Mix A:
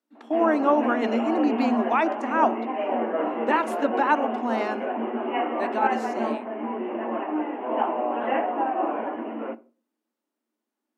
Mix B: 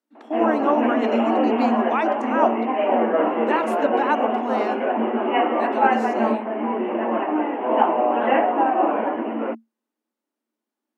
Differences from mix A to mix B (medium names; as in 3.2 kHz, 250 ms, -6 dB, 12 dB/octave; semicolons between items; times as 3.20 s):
background +7.5 dB; reverb: off